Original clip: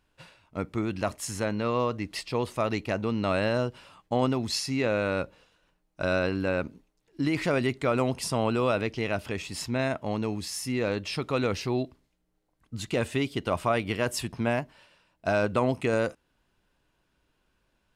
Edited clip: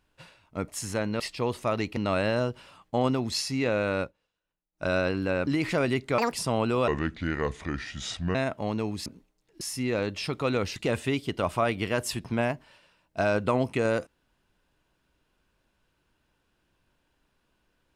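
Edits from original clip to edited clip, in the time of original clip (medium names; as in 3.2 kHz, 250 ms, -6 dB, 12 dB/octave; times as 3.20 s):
0.68–1.14 s: delete
1.66–2.13 s: delete
2.90–3.15 s: delete
5.19–6.02 s: dip -18.5 dB, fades 0.12 s
6.65–7.20 s: move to 10.50 s
7.91–8.18 s: speed 184%
8.73–9.79 s: speed 72%
11.65–12.84 s: delete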